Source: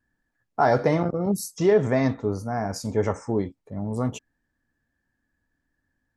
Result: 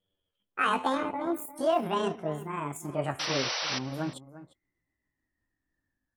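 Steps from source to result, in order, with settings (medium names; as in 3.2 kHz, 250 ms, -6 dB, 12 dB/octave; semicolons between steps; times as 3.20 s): pitch bend over the whole clip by +11.5 st ending unshifted; painted sound noise, 3.19–3.79 s, 450–6000 Hz -26 dBFS; echo from a far wall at 60 m, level -15 dB; trim -6 dB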